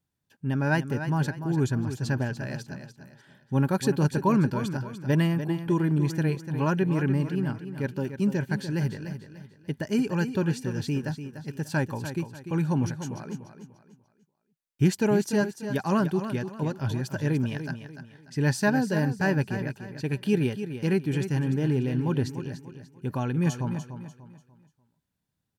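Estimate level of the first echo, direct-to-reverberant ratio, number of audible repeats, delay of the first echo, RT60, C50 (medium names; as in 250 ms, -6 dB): -10.0 dB, no reverb, 3, 294 ms, no reverb, no reverb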